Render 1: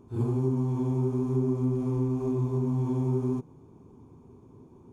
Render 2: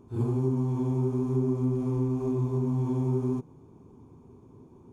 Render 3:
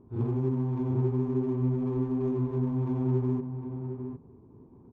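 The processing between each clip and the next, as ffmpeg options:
-af anull
-filter_complex "[0:a]adynamicsmooth=sensitivity=7.5:basefreq=1.1k,asplit=2[a][b];[b]adelay=758,volume=-7dB,highshelf=f=4k:g=-17.1[c];[a][c]amix=inputs=2:normalize=0,volume=-1.5dB"

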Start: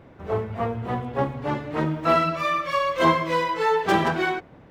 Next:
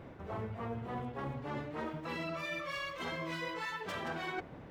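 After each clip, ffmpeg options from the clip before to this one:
-af "afftfilt=real='re*lt(hypot(re,im),0.398)':imag='im*lt(hypot(re,im),0.398)':win_size=1024:overlap=0.75,areverse,acompressor=threshold=-35dB:ratio=12,areverse,volume=-1dB"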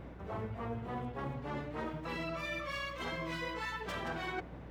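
-af "aeval=exprs='val(0)+0.00316*(sin(2*PI*60*n/s)+sin(2*PI*2*60*n/s)/2+sin(2*PI*3*60*n/s)/3+sin(2*PI*4*60*n/s)/4+sin(2*PI*5*60*n/s)/5)':c=same"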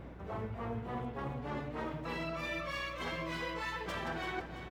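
-af "aecho=1:1:336|672|1008|1344|1680:0.316|0.139|0.0612|0.0269|0.0119"

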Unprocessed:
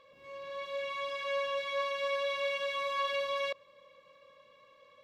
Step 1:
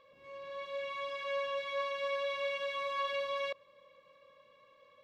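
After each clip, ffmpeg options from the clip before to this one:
-af "highshelf=f=5.3k:g=-6.5,volume=-2dB"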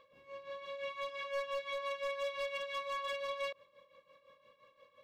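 -af "tremolo=f=5.8:d=0.7,asoftclip=type=hard:threshold=-34dB,volume=1dB"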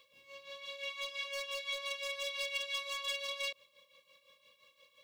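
-filter_complex "[0:a]acrossover=split=350|870[a][b][c];[c]aexciter=amount=5.5:drive=5.6:freq=2.2k[d];[a][b][d]amix=inputs=3:normalize=0,aeval=exprs='0.126*(cos(1*acos(clip(val(0)/0.126,-1,1)))-cos(1*PI/2))+0.00562*(cos(2*acos(clip(val(0)/0.126,-1,1)))-cos(2*PI/2))':c=same,volume=-6.5dB"

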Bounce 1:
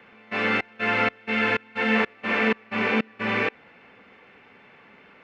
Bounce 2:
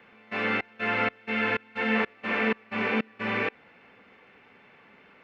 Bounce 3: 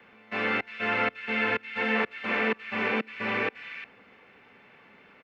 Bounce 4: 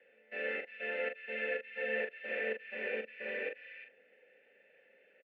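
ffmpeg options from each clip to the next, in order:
-filter_complex "[0:a]acrossover=split=4000[a][b];[b]acompressor=threshold=-47dB:ratio=4:attack=1:release=60[c];[a][c]amix=inputs=2:normalize=0,volume=-3.5dB"
-filter_complex "[0:a]acrossover=split=240|360|1500[a][b][c][d];[a]alimiter=level_in=13dB:limit=-24dB:level=0:latency=1,volume=-13dB[e];[d]aecho=1:1:354:0.422[f];[e][b][c][f]amix=inputs=4:normalize=0"
-filter_complex "[0:a]asplit=3[a][b][c];[a]bandpass=f=530:t=q:w=8,volume=0dB[d];[b]bandpass=f=1.84k:t=q:w=8,volume=-6dB[e];[c]bandpass=f=2.48k:t=q:w=8,volume=-9dB[f];[d][e][f]amix=inputs=3:normalize=0,asplit=2[g][h];[h]adelay=41,volume=-7dB[i];[g][i]amix=inputs=2:normalize=0"

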